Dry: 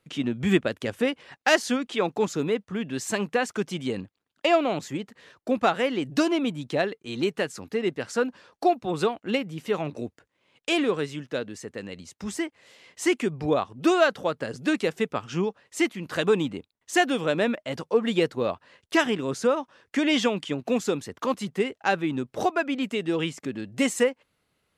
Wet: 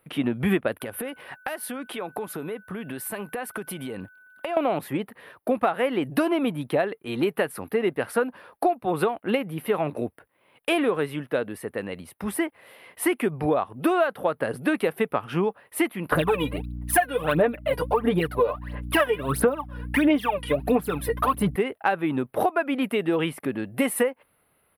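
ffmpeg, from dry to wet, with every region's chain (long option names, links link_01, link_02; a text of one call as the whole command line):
ffmpeg -i in.wav -filter_complex "[0:a]asettb=1/sr,asplit=3[link_01][link_02][link_03];[link_01]atrim=end=0.804[link_04];[link_02]atrim=start=0.8:end=4.57,asetpts=PTS-STARTPTS,afade=type=in:duration=0.004:curve=qsin,afade=type=out:start_time=3.766:duration=0.004:curve=qsin,highshelf=frequency=6000:gain=7.5,acompressor=threshold=-33dB:ratio=16:attack=3.2:release=140:knee=1:detection=peak,aeval=exprs='val(0)+0.00141*sin(2*PI*1500*n/s)':channel_layout=same[link_05];[link_03]atrim=start=4.566[link_06];[link_04][link_05]acrossfade=duration=0.004:curve1=hsin:curve2=qsin[link_07];[link_07][link_06]acrossfade=duration=0.004:curve1=qsin:curve2=hsin,asettb=1/sr,asplit=3[link_08][link_09][link_10];[link_08]atrim=end=16.124[link_11];[link_09]atrim=start=16.12:end=21.56,asetpts=PTS-STARTPTS,afade=type=in:duration=0.004:curve=qsin,afade=type=out:start_time=5.436:duration=0.004:curve=qsin,aecho=1:1:6.8:0.6,atrim=end_sample=239904,aphaser=in_gain=1:out_gain=1:delay=2.1:decay=0.79:speed=1.5:type=sinusoidal,aeval=exprs='val(0)+0.0178*(sin(2*PI*60*n/s)+sin(2*PI*2*60*n/s)/2+sin(2*PI*3*60*n/s)/3+sin(2*PI*4*60*n/s)/4+sin(2*PI*5*60*n/s)/5)':channel_layout=same[link_12];[link_10]atrim=start=21.556[link_13];[link_11][link_12]acrossfade=duration=0.004:curve1=hsin:curve2=qsin[link_14];[link_14][link_13]acrossfade=duration=0.004:curve1=qsin:curve2=hsin,firequalizer=gain_entry='entry(220,0);entry(700,6);entry(2300,1);entry(6900,-21);entry(10000,12)':delay=0.05:min_phase=1,acompressor=threshold=-22dB:ratio=6,volume=3dB" out.wav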